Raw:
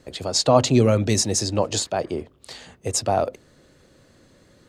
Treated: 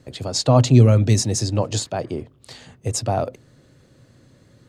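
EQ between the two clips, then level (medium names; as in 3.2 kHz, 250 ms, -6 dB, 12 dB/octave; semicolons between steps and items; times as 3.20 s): peaking EQ 120 Hz +12 dB 0.73 oct; peaking EQ 260 Hz +3.5 dB 0.41 oct; -2.0 dB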